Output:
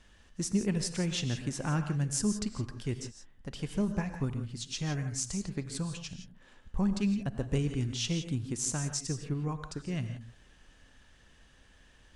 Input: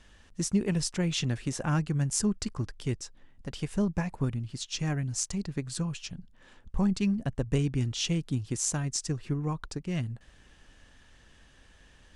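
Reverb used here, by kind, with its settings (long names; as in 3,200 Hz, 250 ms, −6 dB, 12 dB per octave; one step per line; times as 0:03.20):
reverb whose tail is shaped and stops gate 190 ms rising, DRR 8 dB
level −3 dB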